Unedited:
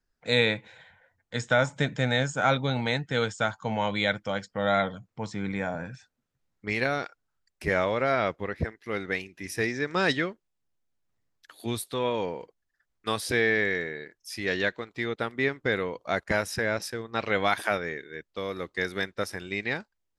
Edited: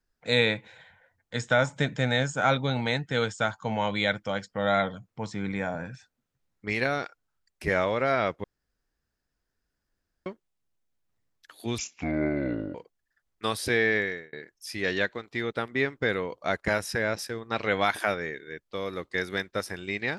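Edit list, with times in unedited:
8.44–10.26 s: room tone
11.78–12.38 s: speed 62%
13.60–13.96 s: fade out

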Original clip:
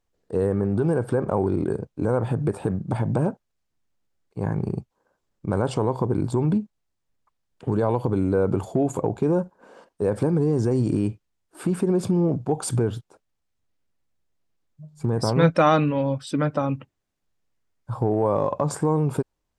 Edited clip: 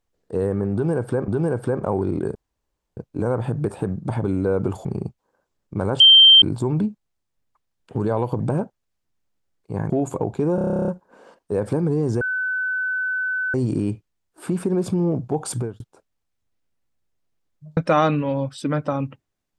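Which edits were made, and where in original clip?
0.73–1.28 s: loop, 2 plays
1.80 s: insert room tone 0.62 s
3.07–4.57 s: swap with 8.12–8.73 s
5.72–6.14 s: bleep 3.14 kHz -6.5 dBFS
9.38 s: stutter 0.03 s, 12 plays
10.71 s: add tone 1.51 kHz -21 dBFS 1.33 s
12.69–12.97 s: fade out
14.94–15.46 s: delete

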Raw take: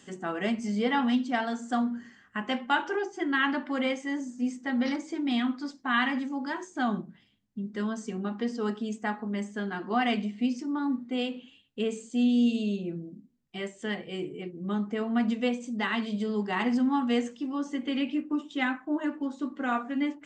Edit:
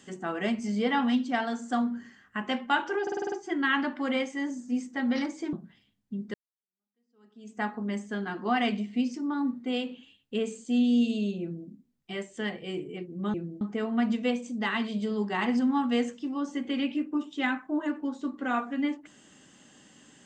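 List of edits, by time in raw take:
3.02 s: stutter 0.05 s, 7 plays
5.23–6.98 s: delete
7.79–9.06 s: fade in exponential
12.86–13.13 s: copy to 14.79 s

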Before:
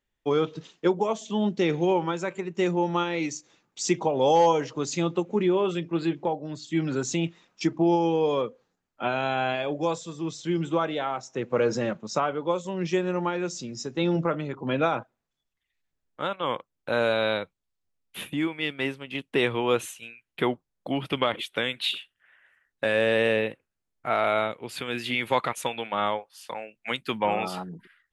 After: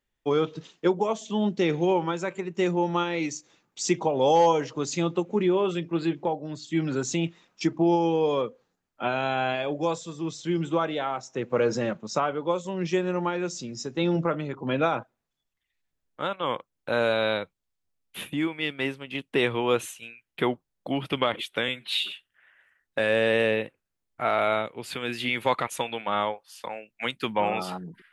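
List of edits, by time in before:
21.68–21.97 s: stretch 1.5×

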